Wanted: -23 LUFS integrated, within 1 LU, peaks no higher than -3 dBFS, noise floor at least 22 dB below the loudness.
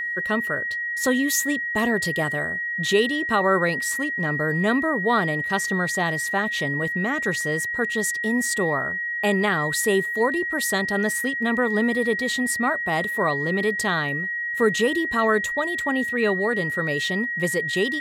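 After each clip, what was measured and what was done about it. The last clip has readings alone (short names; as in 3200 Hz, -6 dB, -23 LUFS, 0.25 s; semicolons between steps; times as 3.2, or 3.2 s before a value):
steady tone 1900 Hz; tone level -25 dBFS; loudness -22.5 LUFS; peak -8.5 dBFS; loudness target -23.0 LUFS
-> notch 1900 Hz, Q 30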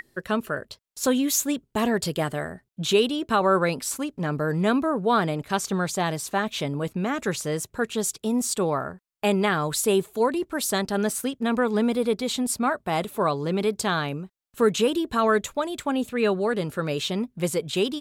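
steady tone none; loudness -25.0 LUFS; peak -9.5 dBFS; loudness target -23.0 LUFS
-> gain +2 dB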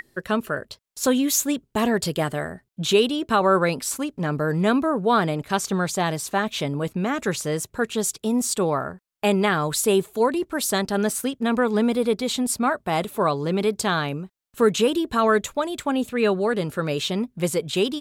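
loudness -23.0 LUFS; peak -7.5 dBFS; noise floor -70 dBFS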